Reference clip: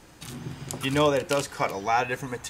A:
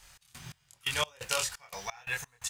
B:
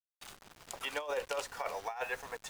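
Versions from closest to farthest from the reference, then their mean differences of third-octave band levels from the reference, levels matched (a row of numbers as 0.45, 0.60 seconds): B, A; 8.0, 11.5 decibels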